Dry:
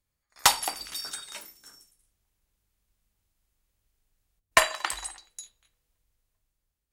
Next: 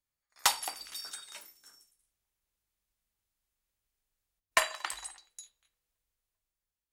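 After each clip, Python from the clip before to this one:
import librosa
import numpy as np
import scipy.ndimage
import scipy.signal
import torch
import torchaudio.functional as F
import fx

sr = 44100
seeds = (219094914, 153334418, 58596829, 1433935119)

y = fx.low_shelf(x, sr, hz=340.0, db=-8.5)
y = y * 10.0 ** (-6.0 / 20.0)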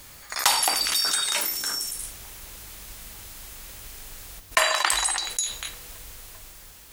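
y = fx.env_flatten(x, sr, amount_pct=70)
y = y * 10.0 ** (4.0 / 20.0)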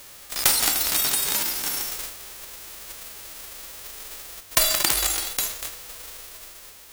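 y = fx.envelope_flatten(x, sr, power=0.1)
y = y * 10.0 ** (1.5 / 20.0)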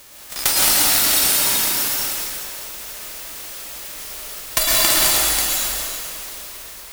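y = fx.rev_plate(x, sr, seeds[0], rt60_s=2.3, hf_ratio=0.95, predelay_ms=95, drr_db=-5.5)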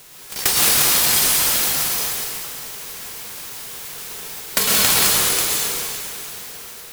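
y = x * np.sign(np.sin(2.0 * np.pi * 440.0 * np.arange(len(x)) / sr))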